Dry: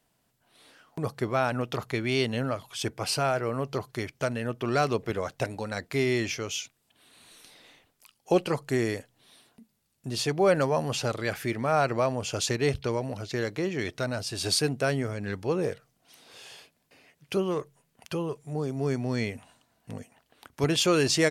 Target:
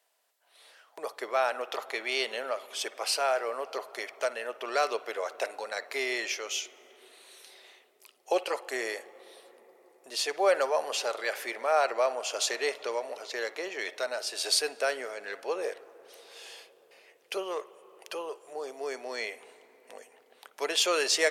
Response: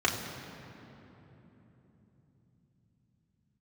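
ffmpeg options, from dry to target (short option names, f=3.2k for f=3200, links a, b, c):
-filter_complex "[0:a]highpass=f=510:w=0.5412,highpass=f=510:w=1.3066,asoftclip=type=hard:threshold=-14dB,asplit=2[a][b];[1:a]atrim=start_sample=2205,asetrate=25137,aresample=44100[c];[b][c]afir=irnorm=-1:irlink=0,volume=-27dB[d];[a][d]amix=inputs=2:normalize=0"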